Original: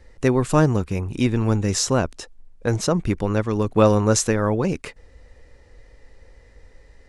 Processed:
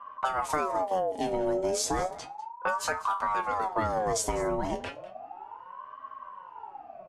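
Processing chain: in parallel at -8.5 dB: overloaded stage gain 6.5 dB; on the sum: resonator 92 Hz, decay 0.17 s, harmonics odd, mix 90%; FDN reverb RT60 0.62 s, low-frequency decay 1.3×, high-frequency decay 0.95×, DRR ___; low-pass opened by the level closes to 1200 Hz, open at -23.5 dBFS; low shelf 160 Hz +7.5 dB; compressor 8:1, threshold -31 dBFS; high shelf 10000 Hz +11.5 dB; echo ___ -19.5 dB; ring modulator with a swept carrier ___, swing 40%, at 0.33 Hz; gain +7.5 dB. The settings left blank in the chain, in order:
17 dB, 0.198 s, 780 Hz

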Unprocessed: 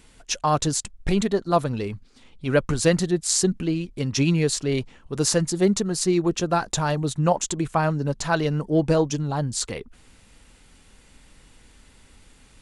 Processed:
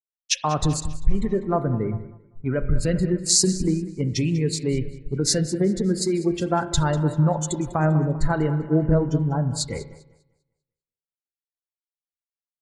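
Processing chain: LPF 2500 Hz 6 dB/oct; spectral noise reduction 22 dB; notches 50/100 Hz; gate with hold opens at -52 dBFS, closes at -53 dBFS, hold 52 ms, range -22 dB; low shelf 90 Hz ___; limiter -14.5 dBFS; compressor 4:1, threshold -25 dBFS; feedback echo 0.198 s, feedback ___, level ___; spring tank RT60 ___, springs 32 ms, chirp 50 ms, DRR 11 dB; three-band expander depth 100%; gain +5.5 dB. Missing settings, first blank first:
+11.5 dB, 57%, -13 dB, 1.5 s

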